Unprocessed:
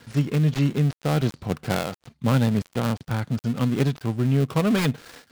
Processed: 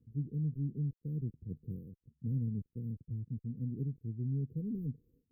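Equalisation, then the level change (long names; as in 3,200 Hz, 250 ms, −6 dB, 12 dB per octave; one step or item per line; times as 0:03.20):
linear-phase brick-wall band-stop 520–12,000 Hz
high-frequency loss of the air 73 metres
guitar amp tone stack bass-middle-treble 6-0-2
+2.0 dB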